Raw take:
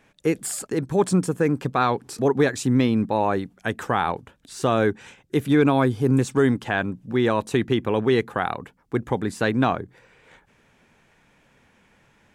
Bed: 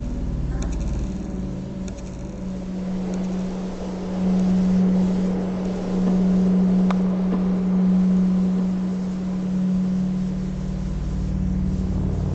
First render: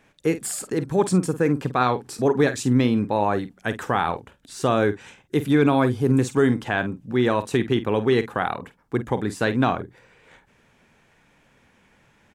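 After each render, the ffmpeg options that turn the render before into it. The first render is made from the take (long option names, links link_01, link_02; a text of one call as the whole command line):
ffmpeg -i in.wav -filter_complex "[0:a]asplit=2[link_01][link_02];[link_02]adelay=48,volume=-12.5dB[link_03];[link_01][link_03]amix=inputs=2:normalize=0" out.wav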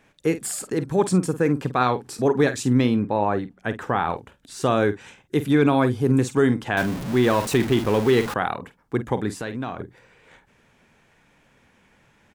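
ffmpeg -i in.wav -filter_complex "[0:a]asettb=1/sr,asplit=3[link_01][link_02][link_03];[link_01]atrim=end=2.964[link_04];[link_02]atrim=start=2.96:end=4.1,asetpts=PTS-STARTPTS,afade=type=in:duration=0.004:curve=qsin,afade=type=out:start_time=1.136:duration=0.004:curve=qsin,highshelf=frequency=3800:gain=-11[link_05];[link_03]atrim=start=4.096[link_06];[link_04][link_05]acrossfade=duration=0.004:curve1=hsin:curve2=qsin[link_07];[link_07][link_06]acrossfade=duration=0.004:curve1=qsin:curve2=hsin,asettb=1/sr,asplit=3[link_08][link_09][link_10];[link_08]atrim=end=6.774[link_11];[link_09]atrim=start=6.77:end=8.34,asetpts=PTS-STARTPTS,afade=type=in:duration=0.004:curve=qsin,afade=type=out:start_time=1.566:duration=0.004:curve=qsin,aeval=exprs='val(0)+0.5*0.0501*sgn(val(0))':channel_layout=same[link_12];[link_10]atrim=start=8.336[link_13];[link_11][link_12]acrossfade=duration=0.004:curve1=hsin:curve2=qsin[link_14];[link_14][link_13]acrossfade=duration=0.004:curve1=qsin:curve2=hsin,asettb=1/sr,asplit=3[link_15][link_16][link_17];[link_15]atrim=end=9.374[link_18];[link_16]atrim=start=9.37:end=9.8,asetpts=PTS-STARTPTS,afade=type=in:duration=0.004:curve=qsin,afade=type=out:start_time=0.426:duration=0.004:curve=qsin,acompressor=threshold=-30dB:ratio=2.5:attack=3.2:release=140:knee=1:detection=peak[link_19];[link_17]atrim=start=9.796[link_20];[link_18][link_19]acrossfade=duration=0.004:curve1=hsin:curve2=qsin[link_21];[link_21][link_20]acrossfade=duration=0.004:curve1=qsin:curve2=hsin" out.wav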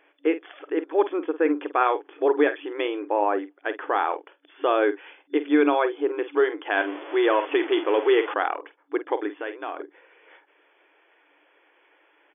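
ffmpeg -i in.wav -af "afftfilt=real='re*between(b*sr/4096,280,3500)':imag='im*between(b*sr/4096,280,3500)':win_size=4096:overlap=0.75" out.wav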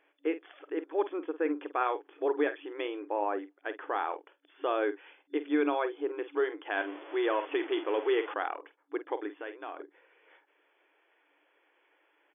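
ffmpeg -i in.wav -af "volume=-8.5dB" out.wav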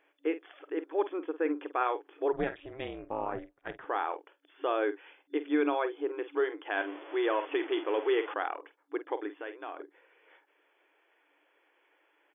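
ffmpeg -i in.wav -filter_complex "[0:a]asplit=3[link_01][link_02][link_03];[link_01]afade=type=out:start_time=2.32:duration=0.02[link_04];[link_02]tremolo=f=270:d=0.857,afade=type=in:start_time=2.32:duration=0.02,afade=type=out:start_time=3.84:duration=0.02[link_05];[link_03]afade=type=in:start_time=3.84:duration=0.02[link_06];[link_04][link_05][link_06]amix=inputs=3:normalize=0" out.wav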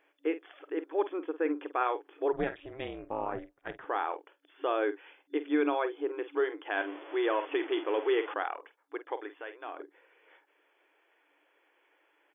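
ffmpeg -i in.wav -filter_complex "[0:a]asettb=1/sr,asplit=3[link_01][link_02][link_03];[link_01]atrim=end=8.434[link_04];[link_02]atrim=start=8.43:end=9.65,asetpts=PTS-STARTPTS,afade=type=in:duration=0.004:curve=qsin,afade=type=out:start_time=1.216:duration=0.004:curve=qsin,equalizer=frequency=250:width=1.5:gain=-11.5[link_05];[link_03]atrim=start=9.646[link_06];[link_04][link_05]acrossfade=duration=0.004:curve1=hsin:curve2=qsin[link_07];[link_07][link_06]acrossfade=duration=0.004:curve1=qsin:curve2=hsin" out.wav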